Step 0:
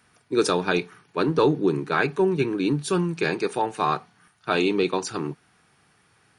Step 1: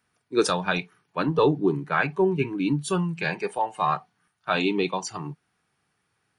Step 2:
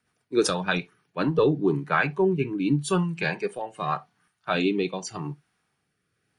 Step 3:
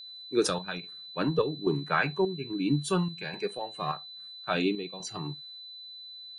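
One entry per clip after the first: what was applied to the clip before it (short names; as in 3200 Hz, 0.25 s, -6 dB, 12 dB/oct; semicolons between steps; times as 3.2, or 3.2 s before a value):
spectral noise reduction 12 dB
rotary speaker horn 8 Hz, later 0.85 Hz, at 0.64; on a send at -21.5 dB: reverb, pre-delay 3 ms; on the sum: gain +2 dB
chopper 1.2 Hz, depth 60%, duty 70%; whine 4000 Hz -39 dBFS; gain -3.5 dB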